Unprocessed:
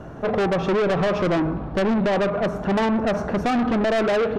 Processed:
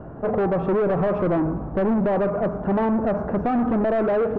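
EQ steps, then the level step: low-pass 1.2 kHz 12 dB/octave; 0.0 dB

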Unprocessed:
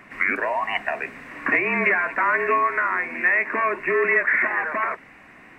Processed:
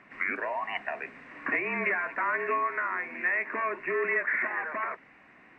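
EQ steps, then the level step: distance through air 95 m; bass shelf 87 Hz -9 dB; -7.5 dB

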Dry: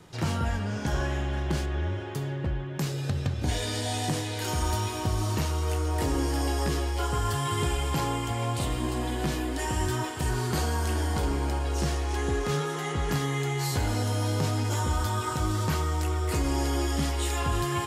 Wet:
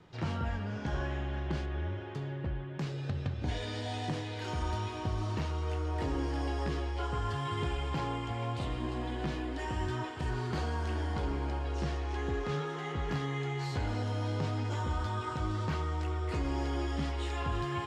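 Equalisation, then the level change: low-pass 3.8 kHz 12 dB/octave; -6.0 dB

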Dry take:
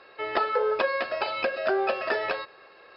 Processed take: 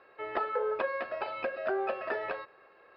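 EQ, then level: low-pass 2.2 kHz 12 dB/octave; -6.0 dB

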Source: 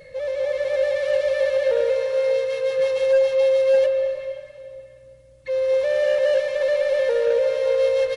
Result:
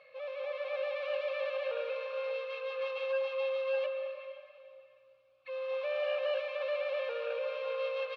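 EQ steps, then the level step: vowel filter a; high-order bell 2.3 kHz +13 dB 2.5 oct; -3.5 dB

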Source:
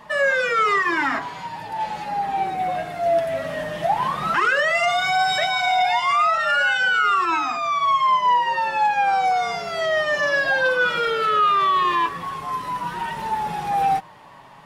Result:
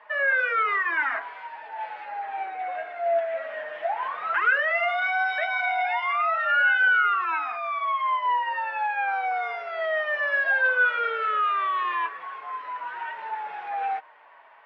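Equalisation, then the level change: cabinet simulation 280–2400 Hz, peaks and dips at 310 Hz +3 dB, 460 Hz +9 dB, 660 Hz +10 dB, 950 Hz +4 dB, 1.5 kHz +8 dB, 2.2 kHz +3 dB; differentiator; +5.0 dB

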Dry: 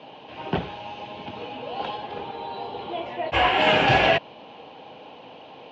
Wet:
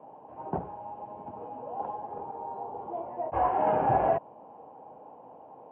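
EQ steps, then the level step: four-pole ladder low-pass 1.1 kHz, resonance 40%; 0.0 dB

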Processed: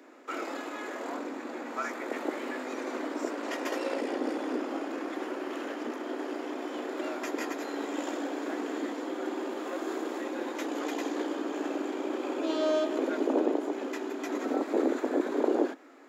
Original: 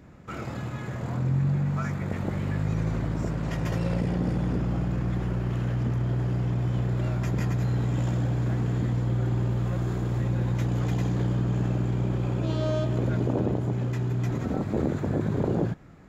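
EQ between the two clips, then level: steep high-pass 260 Hz 72 dB/octave; +2.5 dB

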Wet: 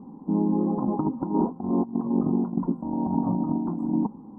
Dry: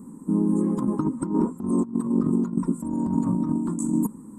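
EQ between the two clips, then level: resonant low-pass 770 Hz, resonance Q 8.2; -2.5 dB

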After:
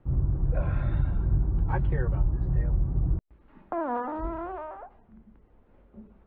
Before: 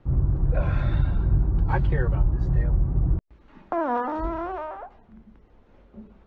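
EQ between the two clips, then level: distance through air 340 m; -3.5 dB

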